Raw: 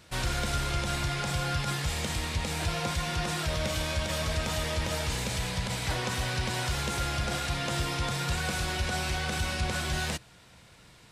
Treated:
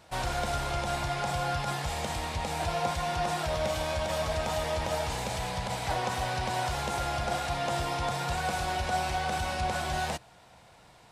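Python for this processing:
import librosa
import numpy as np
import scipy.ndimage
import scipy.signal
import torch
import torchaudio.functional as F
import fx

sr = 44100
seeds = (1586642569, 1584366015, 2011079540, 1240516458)

y = fx.peak_eq(x, sr, hz=760.0, db=12.5, octaves=0.99)
y = F.gain(torch.from_numpy(y), -4.0).numpy()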